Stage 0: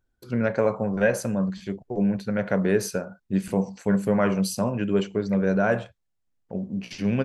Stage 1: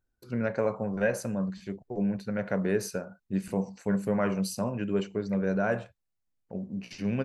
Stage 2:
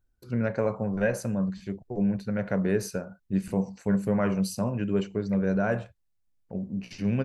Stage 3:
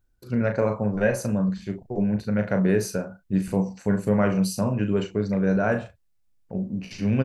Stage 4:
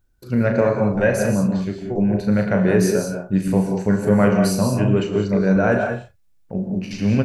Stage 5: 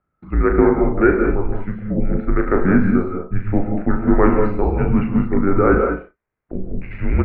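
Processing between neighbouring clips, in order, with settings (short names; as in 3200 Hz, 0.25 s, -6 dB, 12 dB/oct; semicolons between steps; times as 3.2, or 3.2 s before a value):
notch 3300 Hz, Q 10; gain -5.5 dB
low shelf 140 Hz +9 dB
doubler 38 ms -7 dB; gain +3.5 dB
non-linear reverb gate 0.22 s rising, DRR 4 dB; gain +4.5 dB
mistuned SSB -180 Hz 200–2300 Hz; gain +4.5 dB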